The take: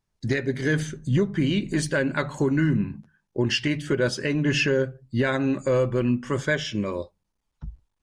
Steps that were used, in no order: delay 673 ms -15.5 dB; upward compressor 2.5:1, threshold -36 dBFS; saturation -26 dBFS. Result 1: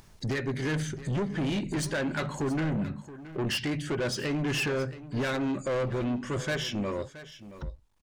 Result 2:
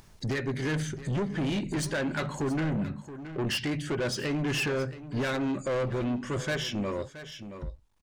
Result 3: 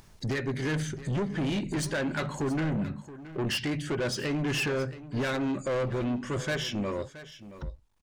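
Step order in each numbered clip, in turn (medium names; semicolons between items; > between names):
saturation > upward compressor > delay; saturation > delay > upward compressor; upward compressor > saturation > delay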